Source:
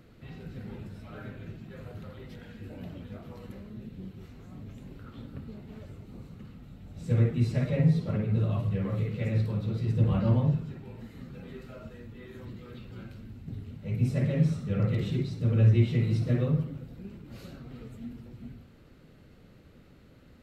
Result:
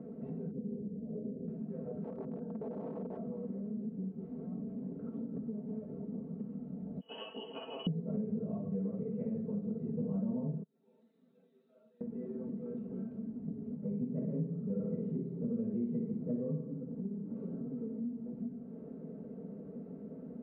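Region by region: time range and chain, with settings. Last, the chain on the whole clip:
0:00.51–0:01.48: transistor ladder low-pass 580 Hz, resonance 40% + low-shelf EQ 250 Hz +10.5 dB
0:02.04–0:03.17: Butterworth low-pass 1,500 Hz 48 dB per octave + wrap-around overflow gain 37.5 dB
0:07.00–0:07.87: noise gate −36 dBFS, range −7 dB + voice inversion scrambler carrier 3,100 Hz
0:10.63–0:12.01: resonant band-pass 3,700 Hz, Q 7.8 + envelope flattener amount 70%
0:13.76–0:18.09: low-pass filter 2,100 Hz 6 dB per octave + notch filter 690 Hz, Q 8.6 + flutter between parallel walls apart 10.1 metres, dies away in 0.51 s
whole clip: Chebyshev band-pass filter 180–560 Hz, order 2; comb filter 4.5 ms, depth 74%; downward compressor 3 to 1, threshold −51 dBFS; level +11 dB

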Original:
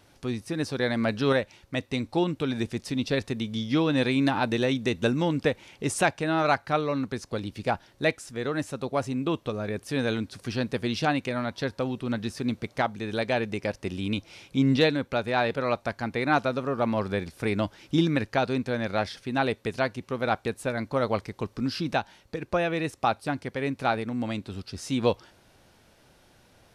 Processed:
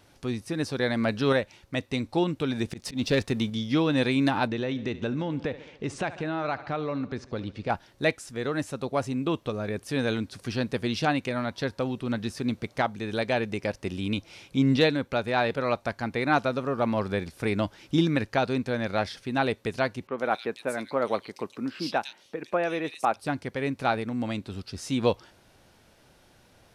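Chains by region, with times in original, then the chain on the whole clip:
0:02.68–0:03.50: leveller curve on the samples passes 1 + volume swells 130 ms
0:04.47–0:07.70: high-frequency loss of the air 130 metres + repeating echo 71 ms, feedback 60%, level −20.5 dB + downward compressor 3 to 1, threshold −26 dBFS
0:20.07–0:23.16: high-pass filter 250 Hz + multiband delay without the direct sound lows, highs 110 ms, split 2,800 Hz
whole clip: no processing

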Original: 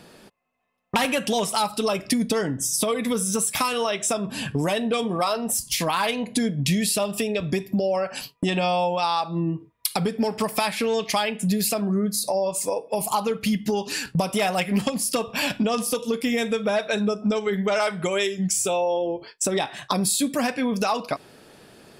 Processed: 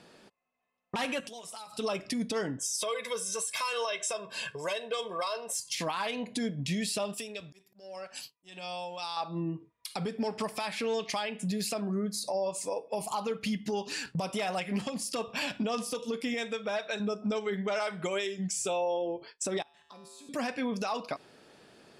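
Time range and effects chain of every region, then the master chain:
0:01.20–0:01.79: downward compressor 10 to 1, threshold −34 dBFS + high-shelf EQ 6,200 Hz +11 dB + notch comb filter 200 Hz
0:02.59–0:05.75: high-pass filter 700 Hz 6 dB per octave + comb filter 1.9 ms, depth 87%
0:07.14–0:09.17: first-order pre-emphasis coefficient 0.8 + volume swells 306 ms + leveller curve on the samples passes 1
0:16.34–0:17.00: low-pass filter 9,700 Hz + low-shelf EQ 460 Hz −7 dB
0:19.62–0:20.29: output level in coarse steps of 13 dB + tuned comb filter 78 Hz, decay 1.5 s, harmonics odd, mix 90%
whole clip: low-pass filter 8,100 Hz 12 dB per octave; low-shelf EQ 130 Hz −8 dB; brickwall limiter −16.5 dBFS; level −6.5 dB

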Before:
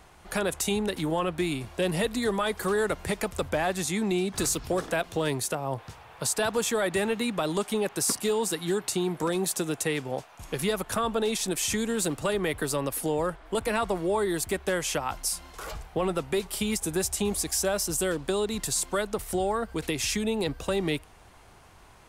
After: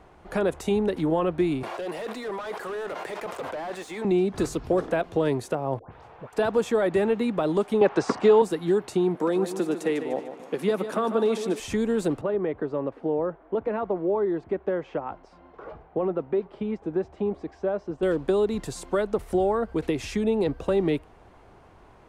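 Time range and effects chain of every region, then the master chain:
0:01.63–0:04.05: high-pass filter 600 Hz + gain into a clipping stage and back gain 34 dB + envelope flattener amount 100%
0:05.79–0:06.33: high-shelf EQ 5,400 Hz −7 dB + downward compressor 2.5 to 1, threshold −42 dBFS + all-pass dispersion highs, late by 134 ms, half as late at 1,400 Hz
0:07.81–0:08.42: low-pass filter 6,600 Hz 24 dB per octave + parametric band 1,100 Hz +9 dB 2.7 octaves + multiband upward and downward compressor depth 40%
0:09.15–0:11.60: Chebyshev high-pass filter 200 Hz, order 3 + repeating echo 149 ms, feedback 45%, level −10 dB
0:12.21–0:18.03: high-pass filter 220 Hz 6 dB per octave + head-to-tape spacing loss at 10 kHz 41 dB
whole clip: low-pass filter 1,600 Hz 6 dB per octave; parametric band 390 Hz +6 dB 2 octaves

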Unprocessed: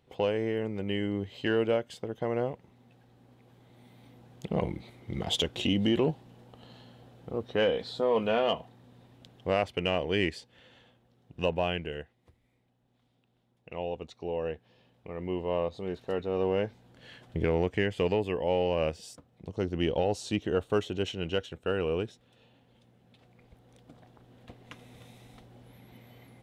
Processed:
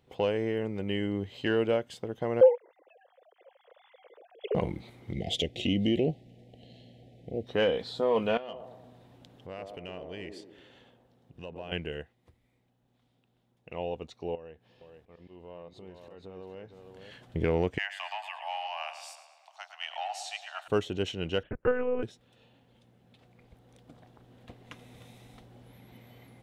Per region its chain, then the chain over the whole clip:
0:02.41–0:04.55: three sine waves on the formant tracks + high-pass with resonance 510 Hz, resonance Q 4.3 + high-shelf EQ 3,000 Hz +11 dB
0:05.13–0:07.47: Chebyshev band-stop filter 710–2,000 Hz, order 3 + high-shelf EQ 7,700 Hz −10.5 dB
0:08.37–0:11.72: downward compressor 2 to 1, threshold −50 dBFS + delay with a band-pass on its return 117 ms, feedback 48%, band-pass 460 Hz, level −3 dB
0:14.35–0:17.11: volume swells 248 ms + downward compressor 2.5 to 1, threshold −50 dBFS + single-tap delay 462 ms −6.5 dB
0:17.78–0:20.68: Butterworth high-pass 670 Hz 96 dB per octave + tape delay 110 ms, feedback 63%, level −9.5 dB, low-pass 5,700 Hz
0:21.43–0:22.03: Butterworth low-pass 2,200 Hz + transient designer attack +7 dB, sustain −9 dB + one-pitch LPC vocoder at 8 kHz 250 Hz
whole clip: no processing

